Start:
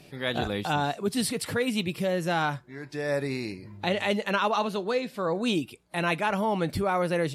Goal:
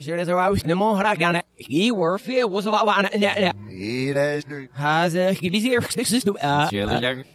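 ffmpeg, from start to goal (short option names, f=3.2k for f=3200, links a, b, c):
-af "areverse,dynaudnorm=f=110:g=5:m=7dB"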